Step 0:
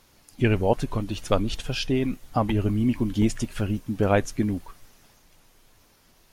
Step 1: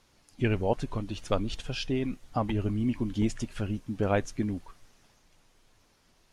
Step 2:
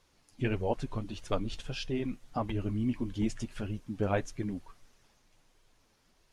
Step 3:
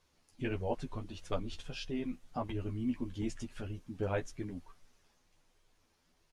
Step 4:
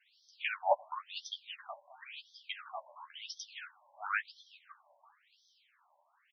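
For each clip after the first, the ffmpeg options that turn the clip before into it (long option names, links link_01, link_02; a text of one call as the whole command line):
ffmpeg -i in.wav -af "lowpass=8900,volume=-5.5dB" out.wav
ffmpeg -i in.wav -af "flanger=delay=1.8:depth=7.8:regen=-37:speed=1.6:shape=sinusoidal" out.wav
ffmpeg -i in.wav -filter_complex "[0:a]asplit=2[link_01][link_02];[link_02]adelay=12,volume=-5.5dB[link_03];[link_01][link_03]amix=inputs=2:normalize=0,volume=-5.5dB" out.wav
ffmpeg -i in.wav -af "aecho=1:1:370:0.188,afftfilt=real='re*between(b*sr/1024,750*pow(4500/750,0.5+0.5*sin(2*PI*0.96*pts/sr))/1.41,750*pow(4500/750,0.5+0.5*sin(2*PI*0.96*pts/sr))*1.41)':imag='im*between(b*sr/1024,750*pow(4500/750,0.5+0.5*sin(2*PI*0.96*pts/sr))/1.41,750*pow(4500/750,0.5+0.5*sin(2*PI*0.96*pts/sr))*1.41)':win_size=1024:overlap=0.75,volume=11.5dB" out.wav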